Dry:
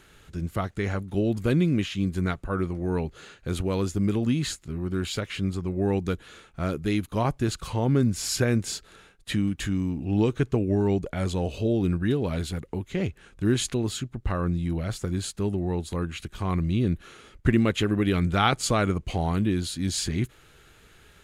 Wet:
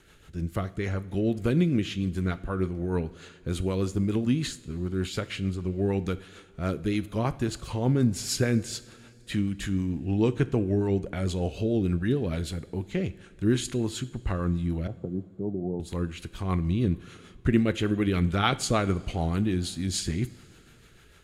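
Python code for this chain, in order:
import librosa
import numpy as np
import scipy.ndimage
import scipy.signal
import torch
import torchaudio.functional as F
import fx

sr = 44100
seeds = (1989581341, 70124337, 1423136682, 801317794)

y = fx.rotary(x, sr, hz=6.7)
y = fx.cheby1_bandpass(y, sr, low_hz=120.0, high_hz=730.0, order=3, at=(14.87, 15.8))
y = fx.rev_double_slope(y, sr, seeds[0], early_s=0.52, late_s=3.0, knee_db=-15, drr_db=14.0)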